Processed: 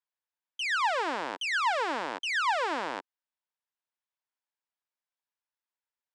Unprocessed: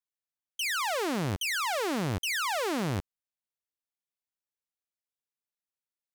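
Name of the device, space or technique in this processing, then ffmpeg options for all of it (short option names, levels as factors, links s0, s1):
phone speaker on a table: -af "highpass=f=330:w=0.5412,highpass=f=330:w=1.3066,equalizer=f=390:t=q:w=4:g=-7,equalizer=f=940:t=q:w=4:g=8,equalizer=f=1600:t=q:w=4:g=5,equalizer=f=4300:t=q:w=4:g=-3,equalizer=f=6200:t=q:w=4:g=-8,lowpass=f=6800:w=0.5412,lowpass=f=6800:w=1.3066"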